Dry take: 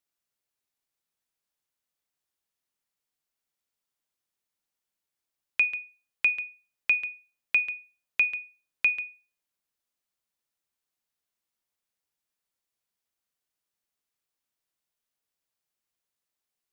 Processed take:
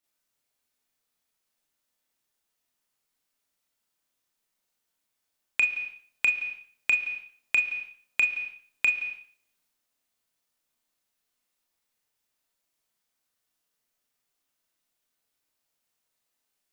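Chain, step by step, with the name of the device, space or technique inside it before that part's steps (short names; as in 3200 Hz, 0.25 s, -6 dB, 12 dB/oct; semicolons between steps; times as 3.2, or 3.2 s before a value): Schroeder reverb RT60 0.46 s, combs from 25 ms, DRR -5 dB; drum-bus smash (transient shaper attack +7 dB, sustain +3 dB; compressor 8:1, threshold -20 dBFS, peak gain reduction 13.5 dB; soft clip -11.5 dBFS, distortion -19 dB)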